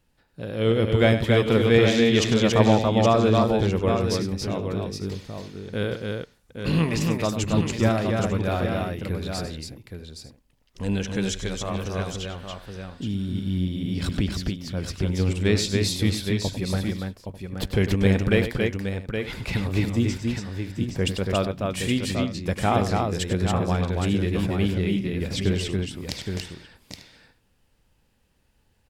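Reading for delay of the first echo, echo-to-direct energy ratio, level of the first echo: 98 ms, −1.5 dB, −11.0 dB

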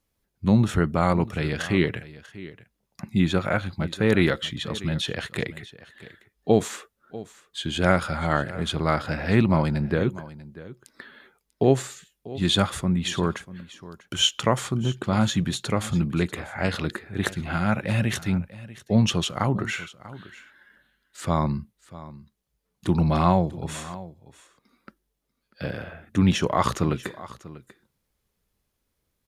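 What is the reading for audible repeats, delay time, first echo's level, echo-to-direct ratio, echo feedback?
1, 642 ms, −17.5 dB, −17.5 dB, repeats not evenly spaced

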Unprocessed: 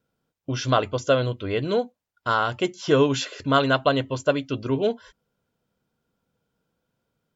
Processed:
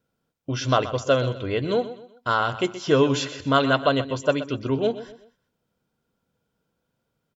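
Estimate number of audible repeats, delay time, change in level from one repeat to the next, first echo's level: 3, 126 ms, −9.0 dB, −14.0 dB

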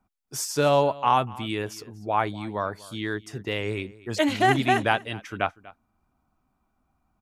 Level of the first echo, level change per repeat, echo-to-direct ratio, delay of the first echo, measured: −20.5 dB, repeats not evenly spaced, −20.5 dB, 242 ms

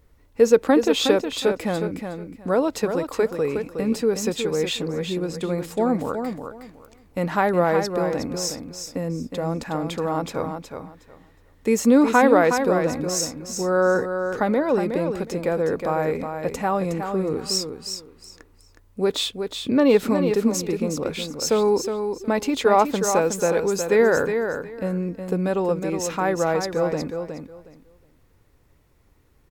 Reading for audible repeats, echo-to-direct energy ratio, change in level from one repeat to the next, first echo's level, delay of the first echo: 3, −7.0 dB, −14.0 dB, −7.0 dB, 365 ms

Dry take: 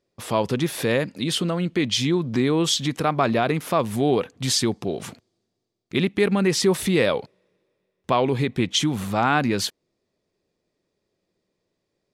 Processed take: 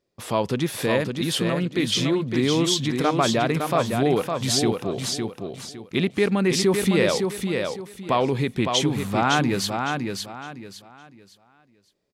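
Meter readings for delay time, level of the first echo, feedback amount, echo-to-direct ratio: 559 ms, −5.0 dB, 29%, −4.5 dB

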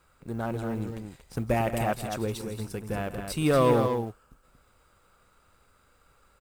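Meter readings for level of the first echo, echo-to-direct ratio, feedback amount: −12.5 dB, −5.5 dB, repeats not evenly spaced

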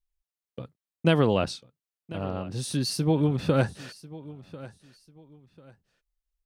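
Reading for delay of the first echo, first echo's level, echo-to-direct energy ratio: 1,044 ms, −18.5 dB, −18.0 dB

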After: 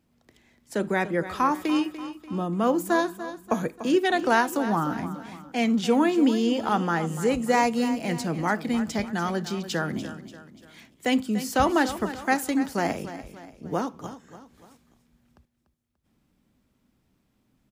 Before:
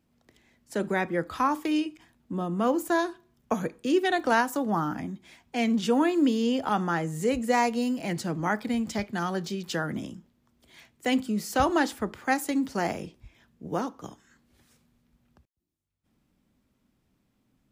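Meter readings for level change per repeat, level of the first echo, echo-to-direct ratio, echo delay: −7.0 dB, −13.0 dB, −12.0 dB, 292 ms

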